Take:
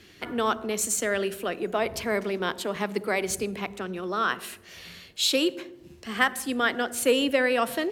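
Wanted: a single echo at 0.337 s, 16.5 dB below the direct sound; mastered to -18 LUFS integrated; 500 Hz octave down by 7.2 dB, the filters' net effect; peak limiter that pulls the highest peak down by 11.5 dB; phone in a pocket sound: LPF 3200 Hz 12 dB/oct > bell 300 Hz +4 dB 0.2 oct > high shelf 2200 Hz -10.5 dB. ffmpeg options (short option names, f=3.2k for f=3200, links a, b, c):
-af "equalizer=f=500:t=o:g=-8.5,alimiter=limit=-19dB:level=0:latency=1,lowpass=3.2k,equalizer=f=300:t=o:w=0.2:g=4,highshelf=f=2.2k:g=-10.5,aecho=1:1:337:0.15,volume=16dB"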